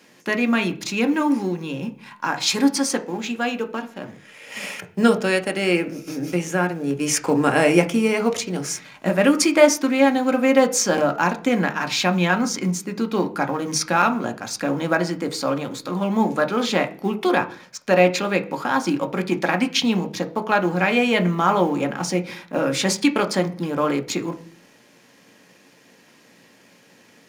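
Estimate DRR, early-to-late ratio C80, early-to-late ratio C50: 5.5 dB, 20.5 dB, 16.0 dB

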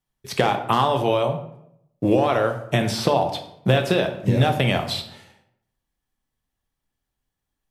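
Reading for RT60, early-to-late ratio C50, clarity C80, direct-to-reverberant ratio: 0.75 s, 9.5 dB, 12.5 dB, 5.5 dB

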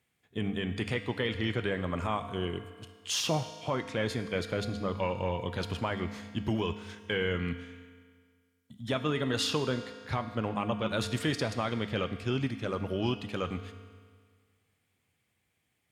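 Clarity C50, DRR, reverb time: 10.5 dB, 8.5 dB, 1.8 s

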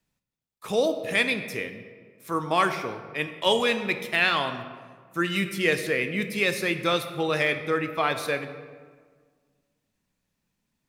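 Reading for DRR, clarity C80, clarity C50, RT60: 8.5 dB, 11.0 dB, 10.0 dB, 1.6 s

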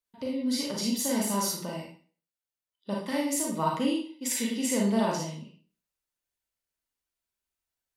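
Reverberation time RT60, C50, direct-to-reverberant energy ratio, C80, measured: 0.40 s, 2.5 dB, -2.5 dB, 8.5 dB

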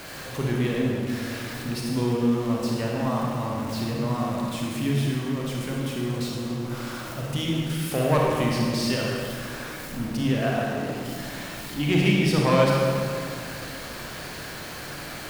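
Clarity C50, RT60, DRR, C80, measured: -1.5 dB, 2.3 s, -3.0 dB, 0.5 dB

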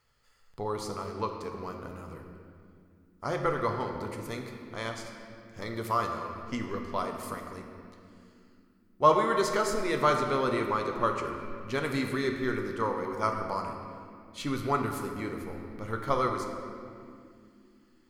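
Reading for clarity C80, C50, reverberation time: 5.5 dB, 4.5 dB, 2.4 s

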